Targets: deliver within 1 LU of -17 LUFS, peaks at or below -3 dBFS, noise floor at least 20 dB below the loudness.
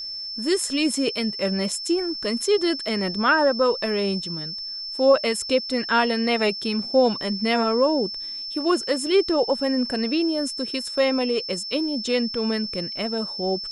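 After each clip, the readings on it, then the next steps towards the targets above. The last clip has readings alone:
steady tone 5300 Hz; tone level -30 dBFS; loudness -23.0 LUFS; peak -6.5 dBFS; loudness target -17.0 LUFS
-> notch 5300 Hz, Q 30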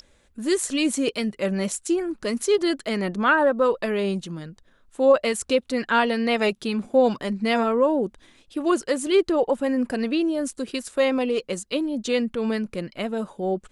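steady tone none; loudness -23.5 LUFS; peak -7.0 dBFS; loudness target -17.0 LUFS
-> gain +6.5 dB; limiter -3 dBFS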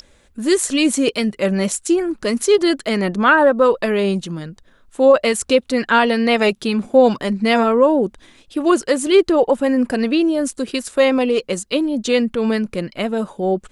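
loudness -17.0 LUFS; peak -3.0 dBFS; noise floor -54 dBFS

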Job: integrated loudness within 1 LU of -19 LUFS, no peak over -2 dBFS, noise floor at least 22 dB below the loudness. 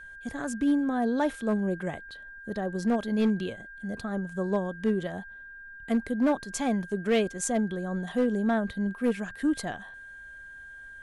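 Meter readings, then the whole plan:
clipped 0.6%; flat tops at -18.5 dBFS; steady tone 1600 Hz; tone level -43 dBFS; loudness -29.0 LUFS; peak -18.5 dBFS; loudness target -19.0 LUFS
-> clip repair -18.5 dBFS; notch 1600 Hz, Q 30; gain +10 dB

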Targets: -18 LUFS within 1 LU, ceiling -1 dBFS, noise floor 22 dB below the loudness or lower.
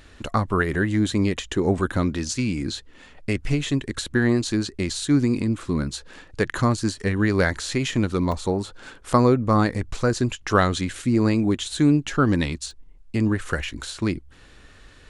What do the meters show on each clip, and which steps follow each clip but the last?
dropouts 3; longest dropout 1.3 ms; loudness -23.0 LUFS; peak -4.0 dBFS; loudness target -18.0 LUFS
-> interpolate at 5.93/8.32/12.71, 1.3 ms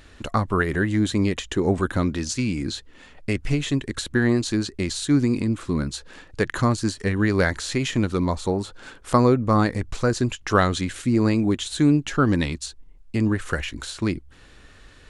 dropouts 0; loudness -23.0 LUFS; peak -4.0 dBFS; loudness target -18.0 LUFS
-> gain +5 dB; limiter -1 dBFS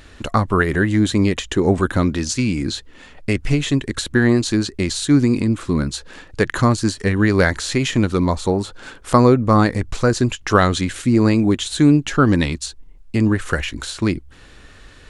loudness -18.5 LUFS; peak -1.0 dBFS; noise floor -44 dBFS

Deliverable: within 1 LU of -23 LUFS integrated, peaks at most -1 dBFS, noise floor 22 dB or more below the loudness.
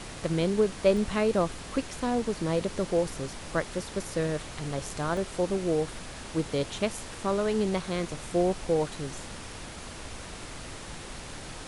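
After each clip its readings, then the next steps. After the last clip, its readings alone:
dropouts 2; longest dropout 1.4 ms; noise floor -42 dBFS; noise floor target -52 dBFS; loudness -29.5 LUFS; peak -10.5 dBFS; loudness target -23.0 LUFS
-> interpolate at 0.97/5.17, 1.4 ms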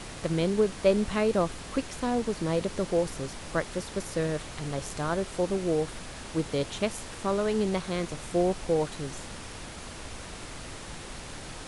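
dropouts 0; noise floor -42 dBFS; noise floor target -52 dBFS
-> noise print and reduce 10 dB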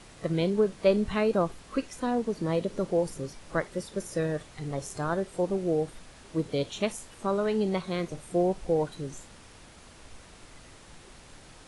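noise floor -52 dBFS; loudness -30.0 LUFS; peak -10.5 dBFS; loudness target -23.0 LUFS
-> gain +7 dB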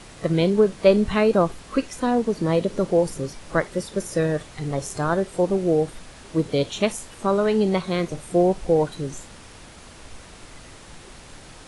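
loudness -23.0 LUFS; peak -3.5 dBFS; noise floor -45 dBFS

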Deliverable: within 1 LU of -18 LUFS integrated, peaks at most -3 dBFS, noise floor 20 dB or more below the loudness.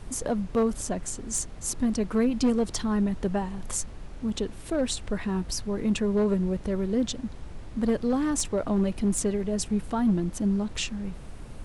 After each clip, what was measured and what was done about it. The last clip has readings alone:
clipped 0.7%; flat tops at -17.5 dBFS; noise floor -42 dBFS; noise floor target -48 dBFS; loudness -28.0 LUFS; peak -17.5 dBFS; loudness target -18.0 LUFS
-> clip repair -17.5 dBFS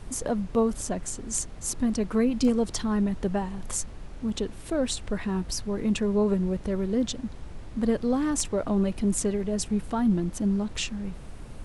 clipped 0.0%; noise floor -42 dBFS; noise floor target -48 dBFS
-> noise print and reduce 6 dB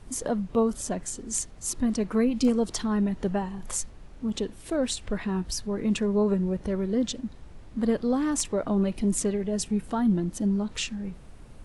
noise floor -46 dBFS; noise floor target -48 dBFS
-> noise print and reduce 6 dB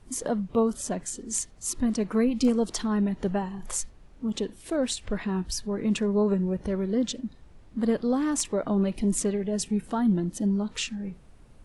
noise floor -52 dBFS; loudness -27.5 LUFS; peak -11.0 dBFS; loudness target -18.0 LUFS
-> gain +9.5 dB; limiter -3 dBFS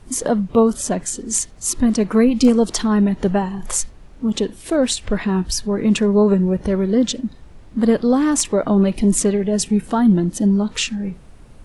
loudness -18.0 LUFS; peak -3.0 dBFS; noise floor -42 dBFS

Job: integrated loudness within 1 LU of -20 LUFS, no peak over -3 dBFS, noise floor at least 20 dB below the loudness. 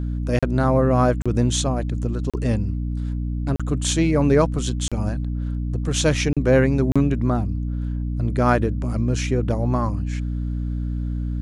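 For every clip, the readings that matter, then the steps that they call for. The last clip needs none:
dropouts 7; longest dropout 36 ms; hum 60 Hz; harmonics up to 300 Hz; hum level -23 dBFS; loudness -22.0 LUFS; peak -5.5 dBFS; loudness target -20.0 LUFS
-> interpolate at 0.39/1.22/2.3/3.56/4.88/6.33/6.92, 36 ms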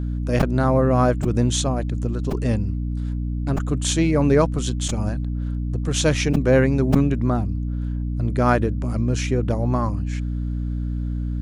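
dropouts 0; hum 60 Hz; harmonics up to 300 Hz; hum level -23 dBFS
-> notches 60/120/180/240/300 Hz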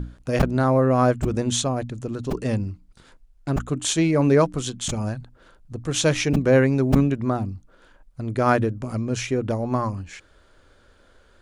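hum none; loudness -22.5 LUFS; peak -4.0 dBFS; loudness target -20.0 LUFS
-> gain +2.5 dB; limiter -3 dBFS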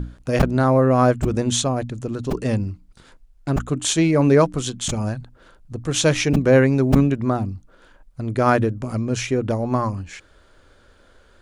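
loudness -20.0 LUFS; peak -3.0 dBFS; noise floor -54 dBFS

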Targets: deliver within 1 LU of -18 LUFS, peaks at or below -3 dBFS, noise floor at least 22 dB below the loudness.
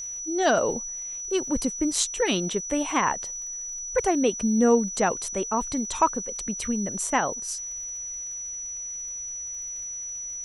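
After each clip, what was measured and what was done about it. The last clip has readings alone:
ticks 56/s; steady tone 5900 Hz; tone level -32 dBFS; loudness -26.5 LUFS; peak -8.0 dBFS; loudness target -18.0 LUFS
-> de-click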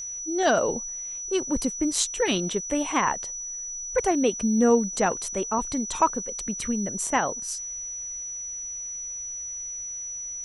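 ticks 0.57/s; steady tone 5900 Hz; tone level -32 dBFS
-> notch 5900 Hz, Q 30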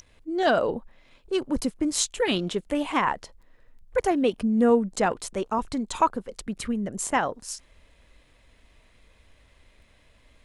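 steady tone none; loudness -26.0 LUFS; peak -8.5 dBFS; loudness target -18.0 LUFS
-> gain +8 dB; limiter -3 dBFS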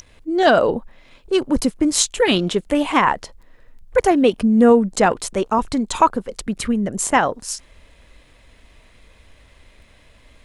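loudness -18.5 LUFS; peak -3.0 dBFS; noise floor -52 dBFS

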